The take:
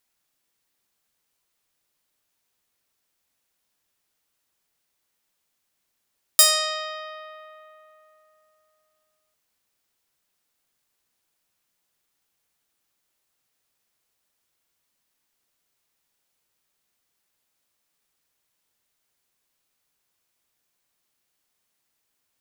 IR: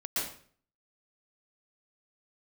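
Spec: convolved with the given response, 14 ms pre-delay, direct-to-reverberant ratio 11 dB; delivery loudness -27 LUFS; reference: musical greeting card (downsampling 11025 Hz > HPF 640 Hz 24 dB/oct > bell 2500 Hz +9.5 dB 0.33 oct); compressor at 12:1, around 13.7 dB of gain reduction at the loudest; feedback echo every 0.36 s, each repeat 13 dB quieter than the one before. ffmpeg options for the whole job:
-filter_complex "[0:a]acompressor=threshold=-24dB:ratio=12,aecho=1:1:360|720|1080:0.224|0.0493|0.0108,asplit=2[a][b];[1:a]atrim=start_sample=2205,adelay=14[c];[b][c]afir=irnorm=-1:irlink=0,volume=-17dB[d];[a][d]amix=inputs=2:normalize=0,aresample=11025,aresample=44100,highpass=f=640:w=0.5412,highpass=f=640:w=1.3066,equalizer=f=2.5k:t=o:w=0.33:g=9.5,volume=4dB"

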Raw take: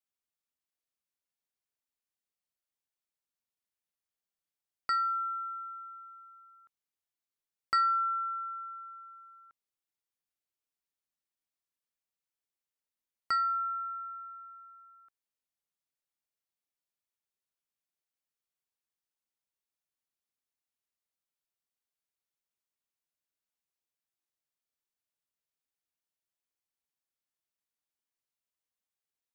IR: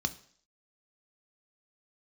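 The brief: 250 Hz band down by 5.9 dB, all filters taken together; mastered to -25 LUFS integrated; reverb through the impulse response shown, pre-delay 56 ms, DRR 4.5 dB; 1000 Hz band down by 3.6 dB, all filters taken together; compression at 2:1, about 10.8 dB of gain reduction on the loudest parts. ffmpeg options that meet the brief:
-filter_complex "[0:a]equalizer=f=250:t=o:g=-8,equalizer=f=1k:t=o:g=-6,acompressor=threshold=-48dB:ratio=2,asplit=2[a][b];[1:a]atrim=start_sample=2205,adelay=56[c];[b][c]afir=irnorm=-1:irlink=0,volume=-8.5dB[d];[a][d]amix=inputs=2:normalize=0,volume=16dB"

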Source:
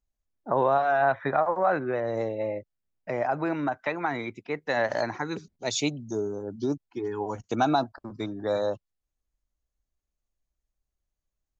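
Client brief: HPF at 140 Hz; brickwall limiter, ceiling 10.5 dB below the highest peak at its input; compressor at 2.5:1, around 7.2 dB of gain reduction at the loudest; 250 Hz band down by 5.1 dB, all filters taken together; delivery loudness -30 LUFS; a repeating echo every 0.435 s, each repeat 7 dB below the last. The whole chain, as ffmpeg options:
-af "highpass=140,equalizer=f=250:t=o:g=-6.5,acompressor=threshold=-30dB:ratio=2.5,alimiter=level_in=3.5dB:limit=-24dB:level=0:latency=1,volume=-3.5dB,aecho=1:1:435|870|1305|1740|2175:0.447|0.201|0.0905|0.0407|0.0183,volume=7dB"

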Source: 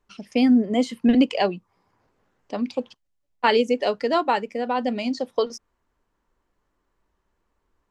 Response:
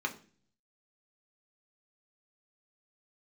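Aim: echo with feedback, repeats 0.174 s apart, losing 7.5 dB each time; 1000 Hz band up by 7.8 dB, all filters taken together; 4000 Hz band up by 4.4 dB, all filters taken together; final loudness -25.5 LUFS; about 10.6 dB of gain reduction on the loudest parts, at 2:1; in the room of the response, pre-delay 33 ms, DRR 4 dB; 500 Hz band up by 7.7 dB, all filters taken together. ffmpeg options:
-filter_complex "[0:a]equalizer=f=500:t=o:g=7,equalizer=f=1k:t=o:g=7,equalizer=f=4k:t=o:g=5.5,acompressor=threshold=-28dB:ratio=2,aecho=1:1:174|348|522|696|870:0.422|0.177|0.0744|0.0312|0.0131,asplit=2[a][b];[1:a]atrim=start_sample=2205,adelay=33[c];[b][c]afir=irnorm=-1:irlink=0,volume=-9dB[d];[a][d]amix=inputs=2:normalize=0,volume=-0.5dB"

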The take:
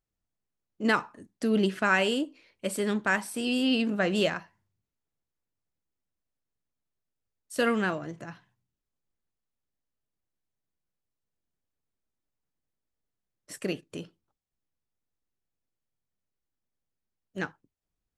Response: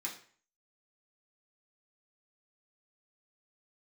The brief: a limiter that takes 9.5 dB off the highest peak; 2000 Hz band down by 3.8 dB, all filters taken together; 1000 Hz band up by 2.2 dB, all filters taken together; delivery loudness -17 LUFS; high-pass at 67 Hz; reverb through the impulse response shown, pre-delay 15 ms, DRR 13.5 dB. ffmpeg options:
-filter_complex "[0:a]highpass=67,equalizer=f=1k:t=o:g=5.5,equalizer=f=2k:t=o:g=-8,alimiter=limit=-20dB:level=0:latency=1,asplit=2[a][b];[1:a]atrim=start_sample=2205,adelay=15[c];[b][c]afir=irnorm=-1:irlink=0,volume=-14dB[d];[a][d]amix=inputs=2:normalize=0,volume=15dB"

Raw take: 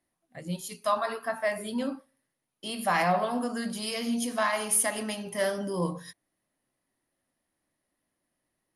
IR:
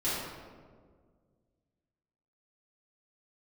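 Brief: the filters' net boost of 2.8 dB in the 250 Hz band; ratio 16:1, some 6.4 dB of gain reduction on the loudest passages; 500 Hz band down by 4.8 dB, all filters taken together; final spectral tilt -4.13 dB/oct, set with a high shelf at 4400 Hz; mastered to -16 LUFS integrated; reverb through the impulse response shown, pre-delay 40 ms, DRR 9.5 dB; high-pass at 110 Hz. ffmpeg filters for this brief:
-filter_complex "[0:a]highpass=110,equalizer=f=250:t=o:g=5,equalizer=f=500:t=o:g=-7.5,highshelf=f=4.4k:g=-4.5,acompressor=threshold=-29dB:ratio=16,asplit=2[a][b];[1:a]atrim=start_sample=2205,adelay=40[c];[b][c]afir=irnorm=-1:irlink=0,volume=-18dB[d];[a][d]amix=inputs=2:normalize=0,volume=18.5dB"

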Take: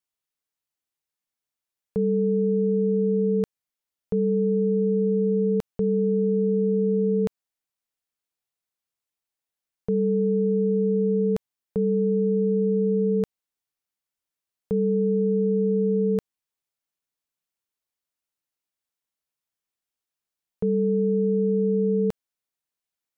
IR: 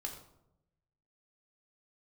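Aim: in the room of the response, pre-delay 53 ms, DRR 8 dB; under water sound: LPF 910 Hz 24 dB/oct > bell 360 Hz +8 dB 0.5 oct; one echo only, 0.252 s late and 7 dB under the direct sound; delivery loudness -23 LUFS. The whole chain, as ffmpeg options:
-filter_complex "[0:a]aecho=1:1:252:0.447,asplit=2[a][b];[1:a]atrim=start_sample=2205,adelay=53[c];[b][c]afir=irnorm=-1:irlink=0,volume=-7dB[d];[a][d]amix=inputs=2:normalize=0,lowpass=f=910:w=0.5412,lowpass=f=910:w=1.3066,equalizer=f=360:t=o:w=0.5:g=8,volume=-6dB"

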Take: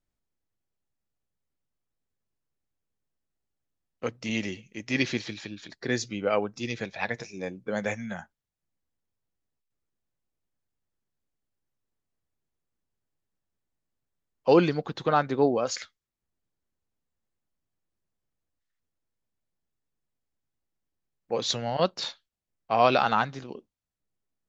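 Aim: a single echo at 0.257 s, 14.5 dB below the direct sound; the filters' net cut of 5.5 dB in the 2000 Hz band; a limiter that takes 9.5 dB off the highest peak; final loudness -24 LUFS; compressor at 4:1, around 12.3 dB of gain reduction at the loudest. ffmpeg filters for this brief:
-af "equalizer=f=2k:t=o:g=-7.5,acompressor=threshold=-30dB:ratio=4,alimiter=level_in=3.5dB:limit=-24dB:level=0:latency=1,volume=-3.5dB,aecho=1:1:257:0.188,volume=15dB"

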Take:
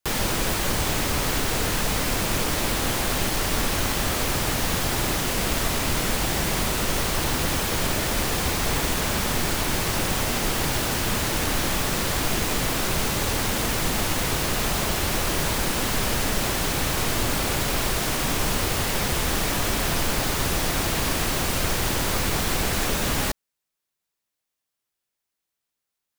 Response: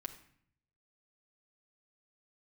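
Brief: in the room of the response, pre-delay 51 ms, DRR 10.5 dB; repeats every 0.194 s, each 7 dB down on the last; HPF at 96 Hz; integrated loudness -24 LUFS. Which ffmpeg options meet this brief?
-filter_complex "[0:a]highpass=96,aecho=1:1:194|388|582|776|970:0.447|0.201|0.0905|0.0407|0.0183,asplit=2[a][b];[1:a]atrim=start_sample=2205,adelay=51[c];[b][c]afir=irnorm=-1:irlink=0,volume=-8.5dB[d];[a][d]amix=inputs=2:normalize=0,volume=-1.5dB"

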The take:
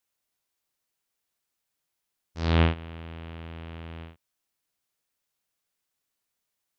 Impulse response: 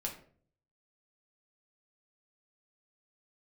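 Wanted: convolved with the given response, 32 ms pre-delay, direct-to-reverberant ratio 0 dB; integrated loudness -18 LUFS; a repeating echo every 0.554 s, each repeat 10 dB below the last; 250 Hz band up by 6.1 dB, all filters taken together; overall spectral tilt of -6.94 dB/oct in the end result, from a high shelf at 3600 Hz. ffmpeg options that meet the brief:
-filter_complex "[0:a]equalizer=f=250:t=o:g=8,highshelf=f=3.6k:g=-5,aecho=1:1:554|1108|1662|2216:0.316|0.101|0.0324|0.0104,asplit=2[a][b];[1:a]atrim=start_sample=2205,adelay=32[c];[b][c]afir=irnorm=-1:irlink=0,volume=-0.5dB[d];[a][d]amix=inputs=2:normalize=0,volume=6.5dB"

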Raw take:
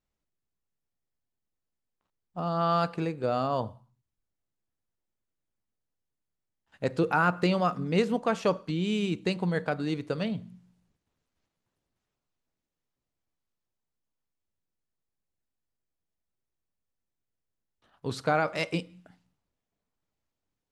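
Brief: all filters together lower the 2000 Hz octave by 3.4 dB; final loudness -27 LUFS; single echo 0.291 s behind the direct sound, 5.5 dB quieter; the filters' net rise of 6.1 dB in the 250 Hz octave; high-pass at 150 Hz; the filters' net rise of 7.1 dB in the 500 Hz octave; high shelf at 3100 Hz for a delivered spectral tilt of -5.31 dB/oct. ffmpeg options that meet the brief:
-af "highpass=150,equalizer=f=250:t=o:g=8,equalizer=f=500:t=o:g=7,equalizer=f=2k:t=o:g=-5,highshelf=f=3.1k:g=-3.5,aecho=1:1:291:0.531,volume=-3.5dB"

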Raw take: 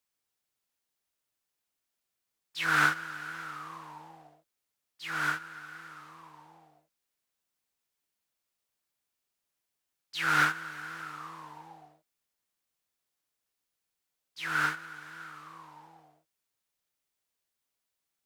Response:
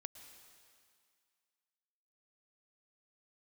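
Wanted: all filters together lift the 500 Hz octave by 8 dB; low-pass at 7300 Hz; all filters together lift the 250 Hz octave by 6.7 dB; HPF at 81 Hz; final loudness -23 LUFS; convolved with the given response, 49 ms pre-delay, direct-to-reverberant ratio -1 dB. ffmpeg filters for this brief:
-filter_complex "[0:a]highpass=81,lowpass=7.3k,equalizer=f=250:t=o:g=6.5,equalizer=f=500:t=o:g=8,asplit=2[a][b];[1:a]atrim=start_sample=2205,adelay=49[c];[b][c]afir=irnorm=-1:irlink=0,volume=6dB[d];[a][d]amix=inputs=2:normalize=0,volume=3.5dB"

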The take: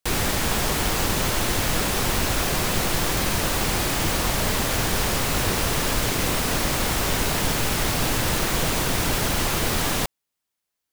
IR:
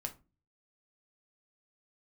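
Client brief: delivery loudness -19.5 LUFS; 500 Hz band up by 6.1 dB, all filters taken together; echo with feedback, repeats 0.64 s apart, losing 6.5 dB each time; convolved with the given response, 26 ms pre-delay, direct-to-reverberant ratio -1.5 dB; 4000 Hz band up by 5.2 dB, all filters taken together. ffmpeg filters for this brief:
-filter_complex "[0:a]equalizer=f=500:t=o:g=7.5,equalizer=f=4k:t=o:g=6.5,aecho=1:1:640|1280|1920|2560|3200|3840:0.473|0.222|0.105|0.0491|0.0231|0.0109,asplit=2[a][b];[1:a]atrim=start_sample=2205,adelay=26[c];[b][c]afir=irnorm=-1:irlink=0,volume=2.5dB[d];[a][d]amix=inputs=2:normalize=0,volume=-4.5dB"

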